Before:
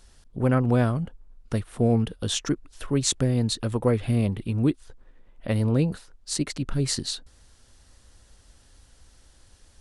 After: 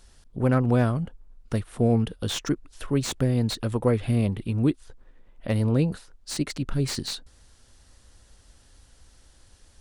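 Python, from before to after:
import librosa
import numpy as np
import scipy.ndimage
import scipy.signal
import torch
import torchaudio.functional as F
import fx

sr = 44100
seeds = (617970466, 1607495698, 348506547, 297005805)

y = fx.slew_limit(x, sr, full_power_hz=190.0)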